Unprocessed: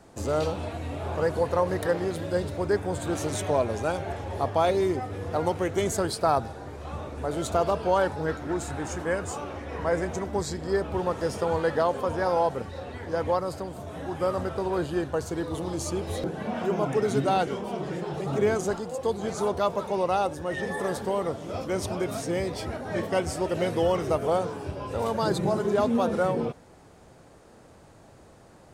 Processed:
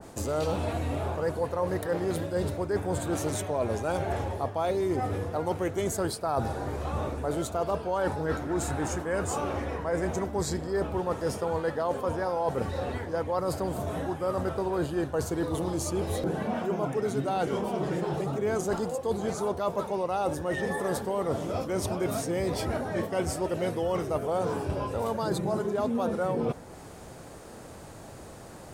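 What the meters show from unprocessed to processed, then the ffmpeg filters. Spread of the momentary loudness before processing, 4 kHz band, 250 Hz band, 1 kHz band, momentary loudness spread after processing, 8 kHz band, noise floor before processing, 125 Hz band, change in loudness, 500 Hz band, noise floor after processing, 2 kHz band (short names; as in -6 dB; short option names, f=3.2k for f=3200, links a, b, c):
9 LU, -3.0 dB, -1.0 dB, -3.0 dB, 4 LU, 0.0 dB, -52 dBFS, 0.0 dB, -2.0 dB, -2.5 dB, -45 dBFS, -3.0 dB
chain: -af "highshelf=f=10k:g=11.5,areverse,acompressor=threshold=-33dB:ratio=6,areverse,adynamicequalizer=threshold=0.00178:dfrequency=1800:dqfactor=0.7:tfrequency=1800:tqfactor=0.7:attack=5:release=100:ratio=0.375:range=2:mode=cutabove:tftype=highshelf,volume=7dB"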